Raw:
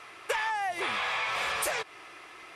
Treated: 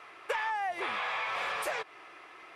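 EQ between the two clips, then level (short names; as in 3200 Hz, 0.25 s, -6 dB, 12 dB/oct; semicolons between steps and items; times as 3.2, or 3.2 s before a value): bell 66 Hz -5.5 dB 0.58 oct; low shelf 240 Hz -9 dB; bell 10000 Hz -11.5 dB 2.6 oct; 0.0 dB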